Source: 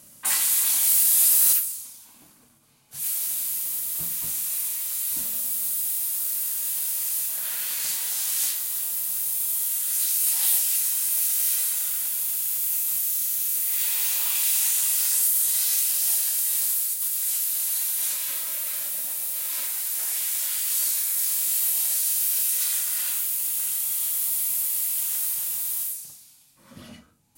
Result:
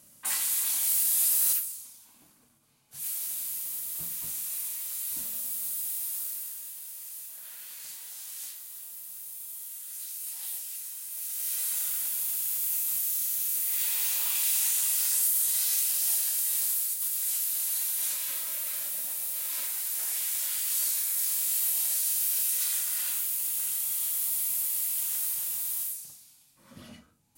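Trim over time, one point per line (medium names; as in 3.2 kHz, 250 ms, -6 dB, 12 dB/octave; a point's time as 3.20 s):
6.19 s -6.5 dB
6.76 s -15 dB
11.08 s -15 dB
11.76 s -4 dB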